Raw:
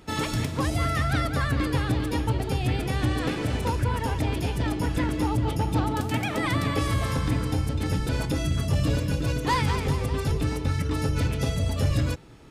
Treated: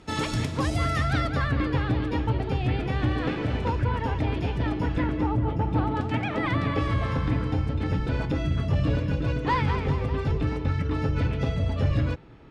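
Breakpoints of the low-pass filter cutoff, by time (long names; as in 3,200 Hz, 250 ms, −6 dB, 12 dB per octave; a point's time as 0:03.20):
0:00.97 8,000 Hz
0:01.60 3,100 Hz
0:04.91 3,100 Hz
0:05.49 1,600 Hz
0:06.00 2,800 Hz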